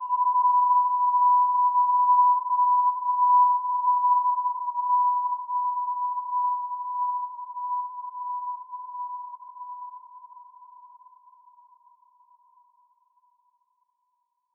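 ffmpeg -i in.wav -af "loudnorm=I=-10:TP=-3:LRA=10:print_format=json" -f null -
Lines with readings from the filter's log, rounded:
"input_i" : "-23.3",
"input_tp" : "-12.3",
"input_lra" : "16.6",
"input_thresh" : "-35.6",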